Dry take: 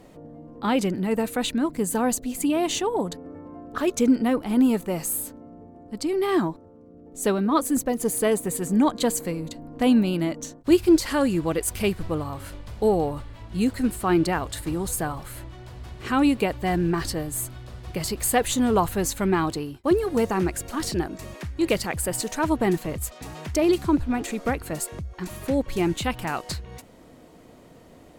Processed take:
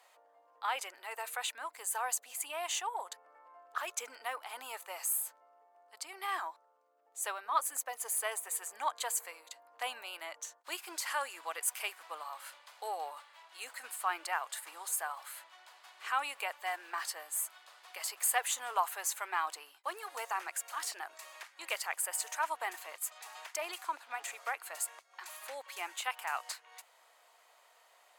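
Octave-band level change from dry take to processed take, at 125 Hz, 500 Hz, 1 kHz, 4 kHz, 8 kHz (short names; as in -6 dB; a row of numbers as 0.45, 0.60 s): under -40 dB, -21.5 dB, -7.0 dB, -8.5 dB, -5.5 dB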